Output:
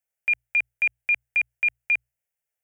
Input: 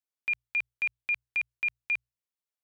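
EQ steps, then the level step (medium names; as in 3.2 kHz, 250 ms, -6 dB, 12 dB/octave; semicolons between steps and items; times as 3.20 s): static phaser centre 1.1 kHz, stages 6; +8.5 dB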